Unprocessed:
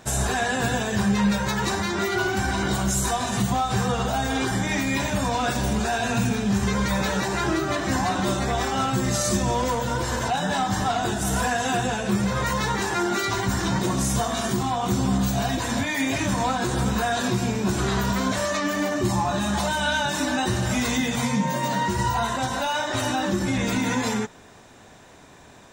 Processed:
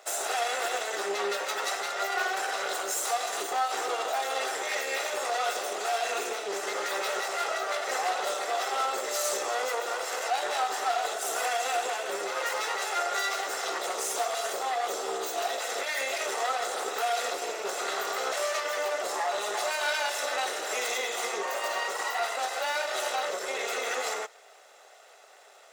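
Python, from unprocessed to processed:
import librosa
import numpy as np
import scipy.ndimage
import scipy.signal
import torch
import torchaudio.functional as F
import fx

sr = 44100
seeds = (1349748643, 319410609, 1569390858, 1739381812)

y = fx.lower_of_two(x, sr, delay_ms=1.5)
y = scipy.signal.sosfilt(scipy.signal.cheby1(4, 1.0, 390.0, 'highpass', fs=sr, output='sos'), y)
y = y * librosa.db_to_amplitude(-2.0)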